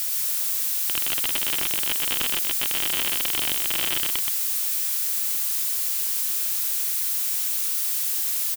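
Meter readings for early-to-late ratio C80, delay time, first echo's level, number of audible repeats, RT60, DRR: no reverb audible, 125 ms, −4.0 dB, 1, no reverb audible, no reverb audible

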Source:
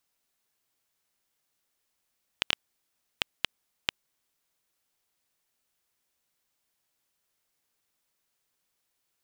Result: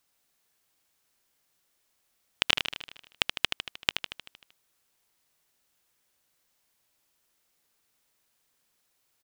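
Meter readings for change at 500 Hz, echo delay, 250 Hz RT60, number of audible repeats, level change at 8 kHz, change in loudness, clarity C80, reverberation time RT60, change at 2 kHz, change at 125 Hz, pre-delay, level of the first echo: +5.0 dB, 77 ms, no reverb audible, 7, +5.0 dB, +4.5 dB, no reverb audible, no reverb audible, +5.0 dB, +5.0 dB, no reverb audible, −7.0 dB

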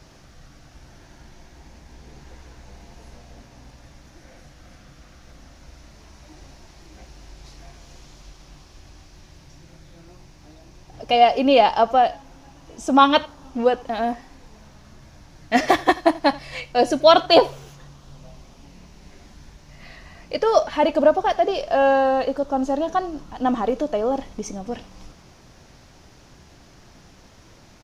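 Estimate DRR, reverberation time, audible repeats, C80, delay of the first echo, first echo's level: no reverb audible, no reverb audible, 1, no reverb audible, 84 ms, −21.5 dB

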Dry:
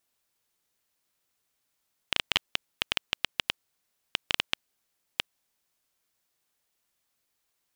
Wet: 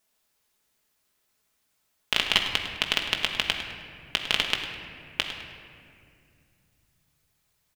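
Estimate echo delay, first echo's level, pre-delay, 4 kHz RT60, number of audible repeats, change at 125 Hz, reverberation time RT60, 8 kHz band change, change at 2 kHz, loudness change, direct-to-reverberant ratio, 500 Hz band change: 103 ms, −12.5 dB, 5 ms, 1.4 s, 1, +6.5 dB, 2.3 s, +4.5 dB, +5.5 dB, +5.0 dB, 0.5 dB, +6.5 dB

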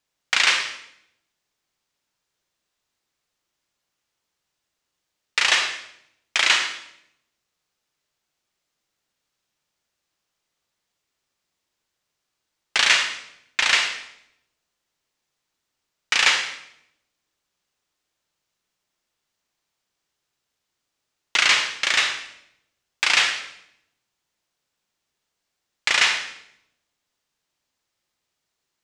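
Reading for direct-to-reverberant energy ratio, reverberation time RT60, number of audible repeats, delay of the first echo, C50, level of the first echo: 5.0 dB, 0.75 s, no echo audible, no echo audible, 6.0 dB, no echo audible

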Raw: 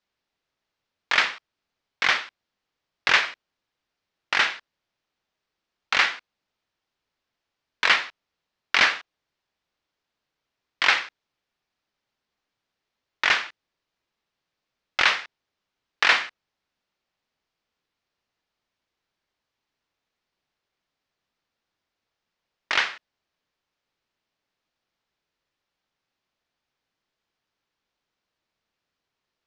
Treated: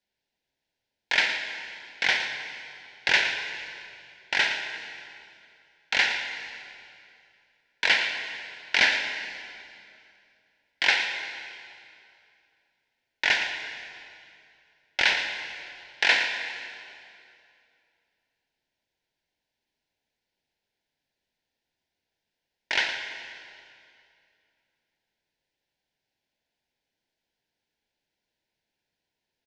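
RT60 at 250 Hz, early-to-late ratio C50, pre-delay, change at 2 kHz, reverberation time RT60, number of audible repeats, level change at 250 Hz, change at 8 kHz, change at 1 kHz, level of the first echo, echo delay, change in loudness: 2.7 s, 5.0 dB, 22 ms, −1.0 dB, 2.5 s, 1, −0.5 dB, −0.5 dB, −6.0 dB, −11.5 dB, 114 ms, −3.5 dB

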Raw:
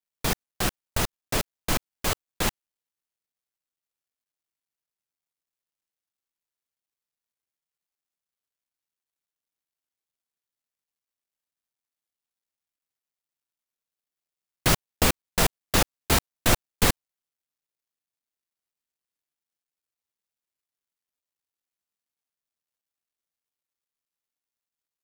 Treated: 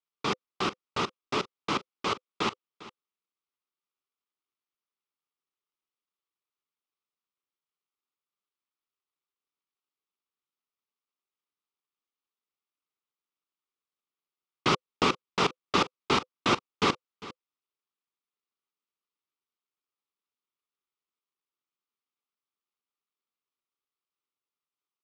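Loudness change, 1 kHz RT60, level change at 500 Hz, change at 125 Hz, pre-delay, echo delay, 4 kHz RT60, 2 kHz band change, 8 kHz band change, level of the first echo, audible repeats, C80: −3.5 dB, no reverb audible, −1.0 dB, −9.5 dB, no reverb audible, 401 ms, no reverb audible, −3.0 dB, −14.5 dB, −18.0 dB, 1, no reverb audible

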